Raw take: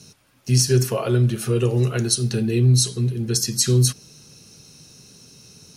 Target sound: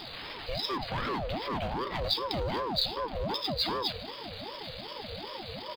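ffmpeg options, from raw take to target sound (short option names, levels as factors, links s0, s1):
-filter_complex "[0:a]aeval=exprs='val(0)+0.5*0.0473*sgn(val(0))':c=same,aemphasis=mode=production:type=50fm,afftfilt=real='re*between(b*sr/4096,170,4600)':imag='im*between(b*sr/4096,170,4600)':win_size=4096:overlap=0.75,asubboost=boost=4:cutoff=250,acrossover=split=2800[s0][s1];[s0]asoftclip=type=hard:threshold=0.075[s2];[s1]acrusher=bits=4:mode=log:mix=0:aa=0.000001[s3];[s2][s3]amix=inputs=2:normalize=0,asplit=2[s4][s5];[s5]adelay=370,highpass=300,lowpass=3400,asoftclip=type=hard:threshold=0.0794,volume=0.0501[s6];[s4][s6]amix=inputs=2:normalize=0,aeval=exprs='val(0)*sin(2*PI*530*n/s+530*0.5/2.6*sin(2*PI*2.6*n/s))':c=same,volume=0.596"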